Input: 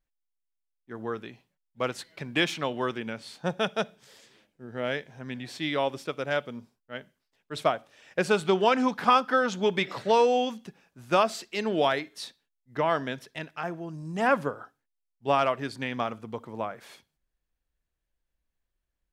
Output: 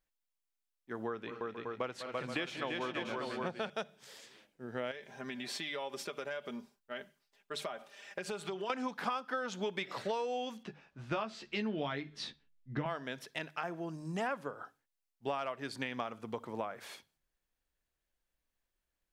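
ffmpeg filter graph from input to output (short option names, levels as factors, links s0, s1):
-filter_complex "[0:a]asettb=1/sr,asplit=3[s0][s1][s2];[s0]atrim=end=1.074[s3];[s1]atrim=start=1.07:end=3.7,asetpts=PTS-STARTPTS,afade=t=in:d=0.004:c=qsin,afade=t=out:st=2.626:d=0.004:c=qsin,lowpass=f=3200:p=1,aecho=1:1:198|249|338|475|583:0.178|0.133|0.562|0.188|0.422,atrim=end_sample=115983[s4];[s2]atrim=start=3.696[s5];[s3][s4]acrossfade=d=0.004:c1=hsin:c2=qsin[s6];[s6][s5]acrossfade=d=0.004:c1=qsin:c2=hsin,asettb=1/sr,asplit=3[s7][s8][s9];[s7]atrim=end=4.914[s10];[s8]atrim=start=4.91:end=8.7,asetpts=PTS-STARTPTS,afade=t=in:d=0.004:c=qsin,afade=t=out:st=3.786:d=0.004:c=qsin,equalizer=f=110:w=0.93:g=-6,aecho=1:1:5:0.58,atrim=end_sample=167139,acompressor=threshold=0.0158:ratio=5:attack=3.2:release=140:knee=1:detection=peak[s11];[s9]atrim=start=8.696[s12];[s10][s11]acrossfade=d=0.004:c1=hsin:c2=qsin[s13];[s13][s12]acrossfade=d=0.004:c1=qsin:c2=hsin,asettb=1/sr,asplit=3[s14][s15][s16];[s14]atrim=end=10.634[s17];[s15]atrim=start=10.63:end=12.86,asetpts=PTS-STARTPTS,afade=t=in:d=0.004:c=qsin,afade=t=out:st=2.226:d=0.004:c=qsin,lowpass=3900,asubboost=boost=11:cutoff=240,asplit=2[s18][s19];[s19]adelay=14,volume=0.562[s20];[s18][s20]amix=inputs=2:normalize=0,atrim=end_sample=98343[s21];[s16]atrim=start=12.856[s22];[s17][s21]acrossfade=d=0.004:c1=hsin:c2=qsin[s23];[s23][s22]acrossfade=d=0.004:c1=qsin:c2=hsin,lowshelf=f=230:g=-7,bandreject=f=50:t=h:w=6,bandreject=f=100:t=h:w=6,bandreject=f=150:t=h:w=6,acompressor=threshold=0.0178:ratio=6,volume=1.12"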